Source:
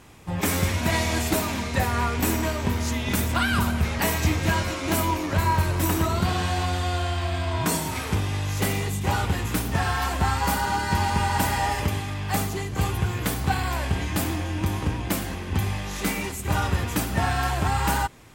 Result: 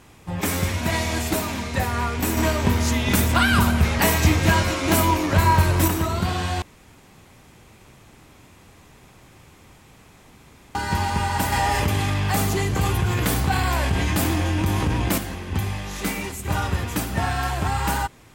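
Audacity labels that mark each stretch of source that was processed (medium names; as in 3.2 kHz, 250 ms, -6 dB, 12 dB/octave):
2.370000	5.880000	gain +5 dB
6.620000	10.750000	room tone
11.520000	15.180000	level flattener amount 70%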